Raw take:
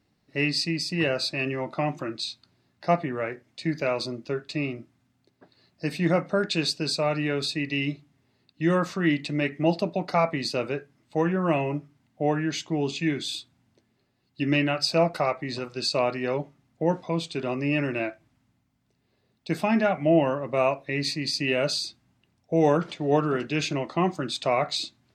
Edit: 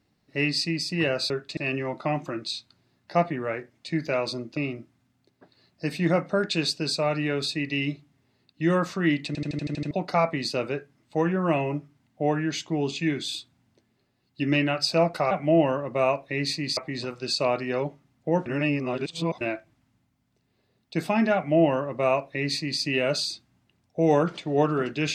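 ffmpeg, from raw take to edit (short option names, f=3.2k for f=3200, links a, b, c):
-filter_complex "[0:a]asplit=16[a][b][c][d][e][f][g][h][i][j][k][l][m][n][o][p];[a]atrim=end=1.302[q];[b]atrim=start=4.298:end=4.572[r];[c]atrim=start=1.298:end=4.302[s];[d]atrim=start=4.568:end=9.352[t];[e]atrim=start=9.268:end=9.352[u];[f]atrim=start=9.268:end=9.352[v];[g]atrim=start=9.268:end=9.352[w];[h]atrim=start=9.268:end=9.352[x];[i]atrim=start=9.268:end=9.352[y];[j]atrim=start=9.268:end=9.352[z];[k]atrim=start=9.268:end=9.352[aa];[l]atrim=start=9.908:end=15.312[ab];[m]atrim=start=19.888:end=21.352[ac];[n]atrim=start=15.308:end=17.002[ad];[o]atrim=start=16.998:end=17.952,asetpts=PTS-STARTPTS,areverse[ae];[p]atrim=start=17.948[af];[q][r]acrossfade=d=0.004:c1=hsin:c2=hsin[ag];[ag][s]acrossfade=d=0.004:c1=hsin:c2=hsin[ah];[ah][t]acrossfade=d=0.004:c1=hsin:c2=hsin[ai];[ai][u]acrossfade=d=0.004:c1=hsin:c2=hsin[aj];[aj][v]acrossfade=d=0.004:c1=hsin:c2=hsin[ak];[ak][w]acrossfade=d=0.004:c1=hsin:c2=hsin[al];[al][x]acrossfade=d=0.004:c1=hsin:c2=hsin[am];[am][y]acrossfade=d=0.004:c1=hsin:c2=hsin[an];[an][z]acrossfade=d=0.004:c1=hsin:c2=hsin[ao];[ao][aa]acrossfade=d=0.004:c1=hsin:c2=hsin[ap];[ap][ab]acrossfade=d=0.004:c1=hsin:c2=hsin[aq];[aq][ac]acrossfade=d=0.004:c1=hsin:c2=hsin[ar];[ar][ad]acrossfade=d=0.004:c1=hsin:c2=hsin[as];[as][ae]acrossfade=d=0.004:c1=hsin:c2=hsin[at];[at][af]acrossfade=d=0.004:c1=hsin:c2=hsin"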